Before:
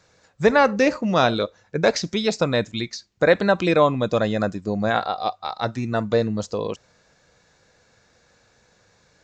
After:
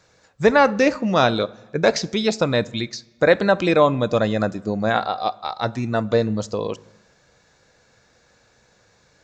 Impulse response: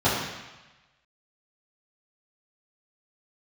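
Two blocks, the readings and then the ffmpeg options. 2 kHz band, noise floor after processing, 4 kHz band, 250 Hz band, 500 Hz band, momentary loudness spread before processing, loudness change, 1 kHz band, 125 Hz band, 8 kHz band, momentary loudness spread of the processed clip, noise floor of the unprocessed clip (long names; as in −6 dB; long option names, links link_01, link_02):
+1.0 dB, −59 dBFS, +1.0 dB, +1.5 dB, +1.5 dB, 10 LU, +1.5 dB, +1.5 dB, +1.5 dB, can't be measured, 11 LU, −61 dBFS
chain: -filter_complex "[0:a]asplit=2[link_01][link_02];[1:a]atrim=start_sample=2205[link_03];[link_02][link_03]afir=irnorm=-1:irlink=0,volume=-36.5dB[link_04];[link_01][link_04]amix=inputs=2:normalize=0,volume=1dB"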